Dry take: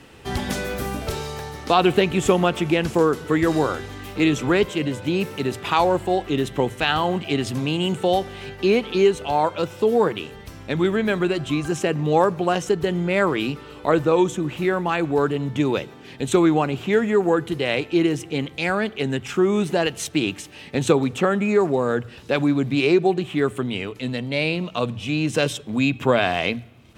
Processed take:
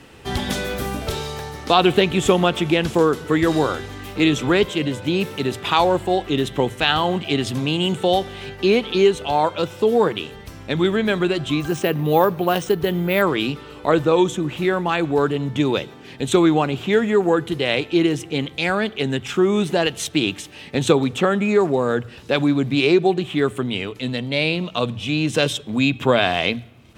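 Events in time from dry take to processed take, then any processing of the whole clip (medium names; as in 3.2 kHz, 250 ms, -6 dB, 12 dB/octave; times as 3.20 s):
11.60–13.22 s: careless resampling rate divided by 3×, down filtered, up hold
whole clip: dynamic bell 3.5 kHz, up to +6 dB, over -46 dBFS, Q 3.5; trim +1.5 dB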